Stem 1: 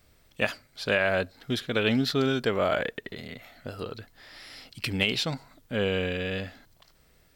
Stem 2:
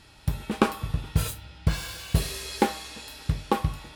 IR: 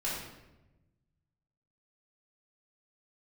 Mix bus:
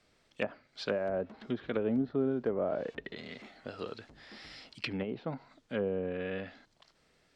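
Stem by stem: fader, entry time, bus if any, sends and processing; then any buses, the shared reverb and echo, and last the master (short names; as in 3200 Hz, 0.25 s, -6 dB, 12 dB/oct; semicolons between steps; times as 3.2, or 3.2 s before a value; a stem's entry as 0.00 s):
-3.5 dB, 0.00 s, no send, treble ducked by the level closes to 640 Hz, closed at -23 dBFS; hard clip -14 dBFS, distortion -48 dB
-17.5 dB, 0.80 s, no send, half-waves squared off; treble ducked by the level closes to 340 Hz, closed at -17.5 dBFS; overloaded stage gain 23.5 dB; auto duck -6 dB, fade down 1.90 s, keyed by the first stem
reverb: off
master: three-band isolator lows -12 dB, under 160 Hz, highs -23 dB, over 8000 Hz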